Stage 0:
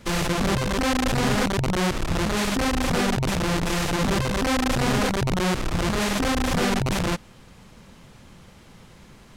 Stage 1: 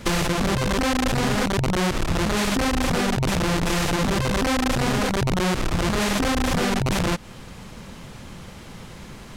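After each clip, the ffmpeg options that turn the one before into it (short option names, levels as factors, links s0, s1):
-af "acompressor=threshold=0.0398:ratio=6,volume=2.66"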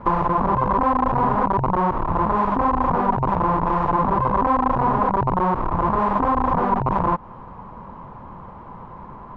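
-af "lowpass=f=1000:t=q:w=6.6,volume=0.841"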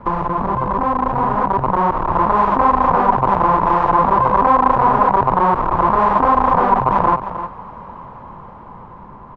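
-filter_complex "[0:a]acrossover=split=420[s0][s1];[s1]dynaudnorm=f=380:g=9:m=2.99[s2];[s0][s2]amix=inputs=2:normalize=0,aecho=1:1:309:0.282"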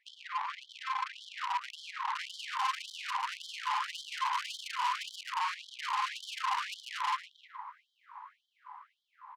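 -filter_complex "[0:a]aeval=exprs='(tanh(10*val(0)+0.5)-tanh(0.5))/10':c=same,asplit=2[s0][s1];[s1]adelay=110.8,volume=0.316,highshelf=f=4000:g=-2.49[s2];[s0][s2]amix=inputs=2:normalize=0,afftfilt=real='re*gte(b*sr/1024,770*pow(3100/770,0.5+0.5*sin(2*PI*1.8*pts/sr)))':imag='im*gte(b*sr/1024,770*pow(3100/770,0.5+0.5*sin(2*PI*1.8*pts/sr)))':win_size=1024:overlap=0.75,volume=0.422"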